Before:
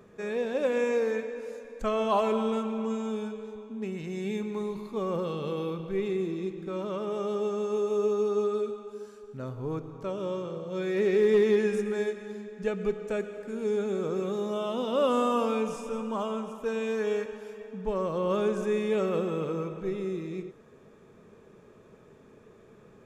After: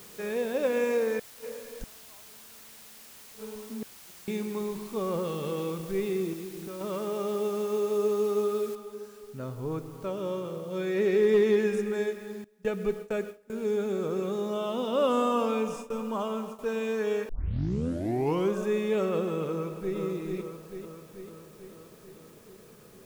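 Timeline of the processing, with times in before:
1.19–4.28 s: inverted gate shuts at -27 dBFS, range -36 dB
6.33–6.81 s: compression, threshold -35 dBFS
8.75 s: noise floor step -50 dB -60 dB
12.44–16.59 s: gate with hold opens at -28 dBFS, closes at -32 dBFS
17.29 s: tape start 1.27 s
19.51–19.97 s: echo throw 440 ms, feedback 65%, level -5 dB

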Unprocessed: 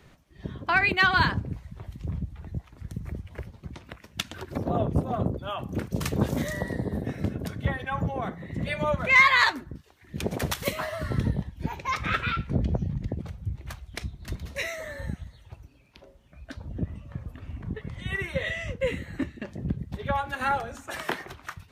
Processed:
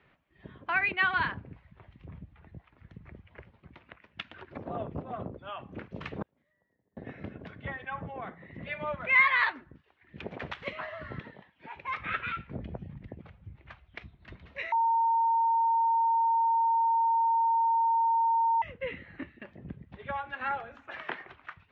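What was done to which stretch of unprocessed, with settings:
6.22–6.97 s: inverted gate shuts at -24 dBFS, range -36 dB
11.19–11.76 s: frequency weighting A
14.72–18.62 s: bleep 915 Hz -15.5 dBFS
whole clip: low-pass 2.7 kHz 24 dB/octave; tilt EQ +2.5 dB/octave; trim -6.5 dB

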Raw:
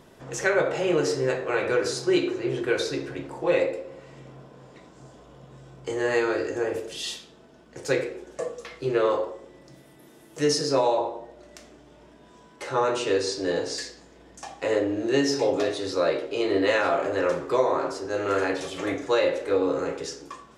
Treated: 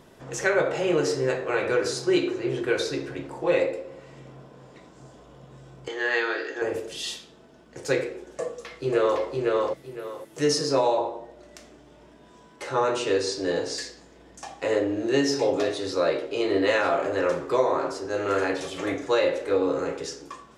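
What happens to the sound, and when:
5.88–6.62 s: cabinet simulation 450–5600 Hz, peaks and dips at 560 Hz -7 dB, 1 kHz -3 dB, 1.7 kHz +7 dB, 3.4 kHz +9 dB
8.41–9.22 s: echo throw 510 ms, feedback 25%, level -1.5 dB

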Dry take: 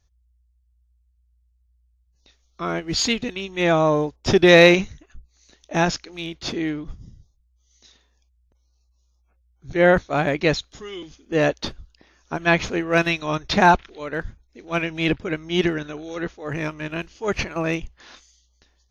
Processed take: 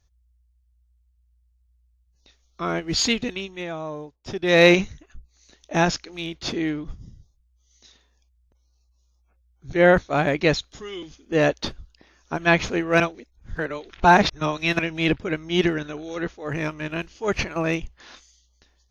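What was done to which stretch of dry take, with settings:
3.36–4.72 s: dip -14 dB, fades 0.30 s
13.00–14.79 s: reverse

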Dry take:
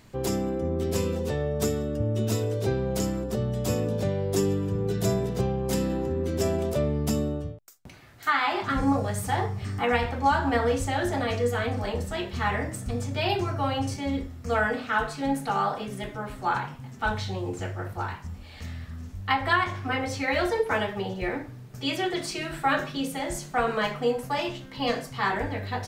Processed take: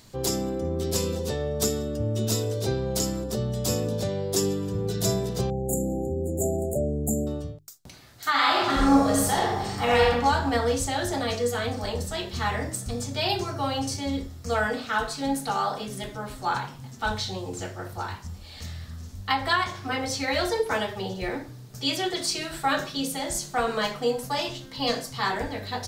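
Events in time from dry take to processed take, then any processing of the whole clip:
5.50–7.27 s: brick-wall FIR band-stop 850–6700 Hz
8.30–10.09 s: reverb throw, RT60 1.1 s, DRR -3 dB
whole clip: resonant high shelf 3.2 kHz +6.5 dB, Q 1.5; hum notches 50/100/150/200/250/300/350/400 Hz

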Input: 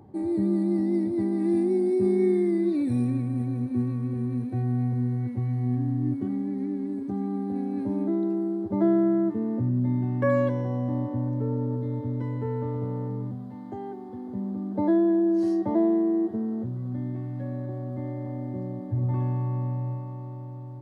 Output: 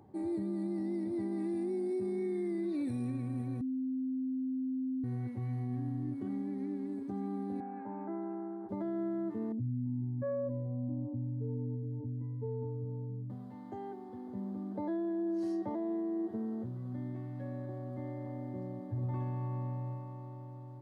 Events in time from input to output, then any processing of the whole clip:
3.61–5.04 s: bleep 260 Hz -24 dBFS
7.60–8.69 s: cabinet simulation 250–2100 Hz, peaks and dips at 290 Hz -8 dB, 410 Hz -4 dB, 580 Hz -6 dB, 830 Hz +9 dB, 1.5 kHz +5 dB
9.52–13.30 s: spectral contrast enhancement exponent 2
whole clip: bass shelf 380 Hz -5 dB; peak limiter -24.5 dBFS; trim -4.5 dB

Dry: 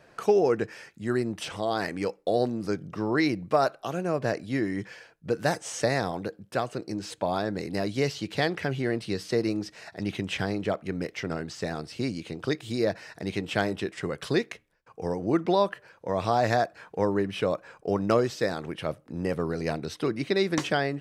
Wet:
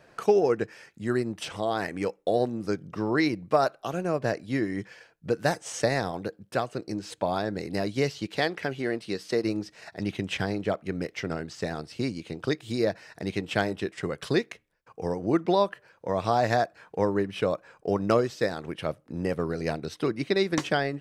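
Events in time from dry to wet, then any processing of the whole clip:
1.60–2.67 s: peaking EQ 4.6 kHz -8.5 dB 0.22 oct
8.26–9.44 s: peaking EQ 91 Hz -9.5 dB 1.7 oct
whole clip: transient shaper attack +1 dB, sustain -4 dB

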